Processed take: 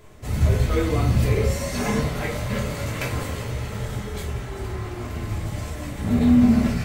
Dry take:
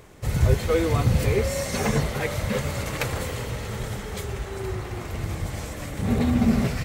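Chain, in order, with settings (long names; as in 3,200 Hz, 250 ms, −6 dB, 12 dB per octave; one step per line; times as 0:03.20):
rectangular room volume 320 cubic metres, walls furnished, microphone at 3 metres
level −5.5 dB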